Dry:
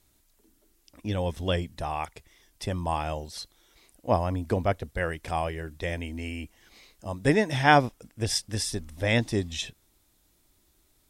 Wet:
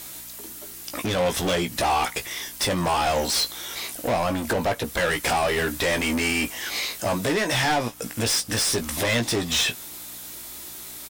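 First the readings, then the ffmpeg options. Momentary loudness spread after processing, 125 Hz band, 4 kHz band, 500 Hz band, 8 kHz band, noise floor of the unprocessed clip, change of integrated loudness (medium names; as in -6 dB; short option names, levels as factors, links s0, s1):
13 LU, -1.5 dB, +10.0 dB, +4.0 dB, +11.5 dB, -67 dBFS, +4.5 dB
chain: -filter_complex "[0:a]highshelf=f=9500:g=12,acompressor=threshold=0.0224:ratio=5,asoftclip=type=hard:threshold=0.0178,aeval=exprs='val(0)+0.000355*(sin(2*PI*60*n/s)+sin(2*PI*2*60*n/s)/2+sin(2*PI*3*60*n/s)/3+sin(2*PI*4*60*n/s)/4+sin(2*PI*5*60*n/s)/5)':c=same,asplit=2[s0][s1];[s1]highpass=f=720:p=1,volume=20,asoftclip=type=tanh:threshold=0.075[s2];[s0][s2]amix=inputs=2:normalize=0,lowpass=f=6700:p=1,volume=0.501,asplit=2[s3][s4];[s4]adelay=17,volume=0.447[s5];[s3][s5]amix=inputs=2:normalize=0,volume=2.37"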